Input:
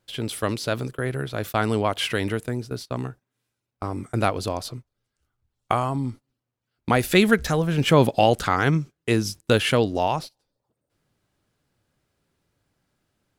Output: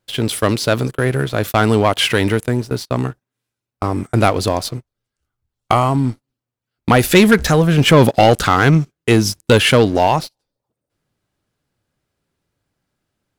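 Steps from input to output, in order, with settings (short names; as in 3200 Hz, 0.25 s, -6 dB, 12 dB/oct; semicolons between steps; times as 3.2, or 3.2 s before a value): sample leveller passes 2; gain +2.5 dB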